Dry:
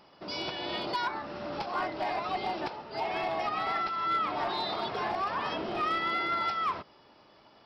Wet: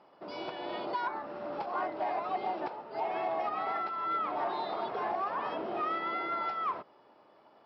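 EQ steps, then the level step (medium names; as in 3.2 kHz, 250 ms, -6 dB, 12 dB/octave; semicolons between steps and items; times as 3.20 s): band-pass filter 630 Hz, Q 0.65; 0.0 dB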